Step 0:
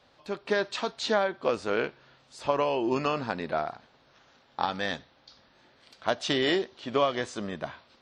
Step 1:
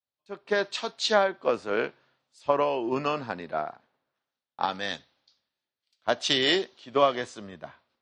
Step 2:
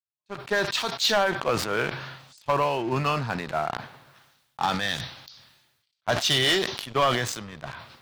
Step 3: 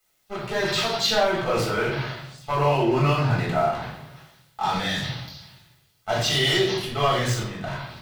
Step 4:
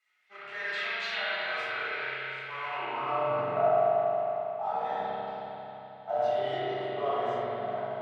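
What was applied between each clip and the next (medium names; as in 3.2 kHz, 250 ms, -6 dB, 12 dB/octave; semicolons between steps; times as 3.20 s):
high-pass 150 Hz 6 dB/octave; three bands expanded up and down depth 100%
graphic EQ 125/250/500 Hz +9/-6/-6 dB; waveshaping leveller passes 3; decay stretcher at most 51 dB/s; trim -5.5 dB
peak limiter -20 dBFS, peak gain reduction 10.5 dB; word length cut 12-bit, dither triangular; reverberation RT60 0.60 s, pre-delay 3 ms, DRR -6 dB; trim -4 dB
companding laws mixed up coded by mu; band-pass sweep 2 kHz -> 660 Hz, 2.62–3.28 s; spring tank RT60 3.7 s, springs 30/45 ms, chirp 30 ms, DRR -8 dB; trim -7.5 dB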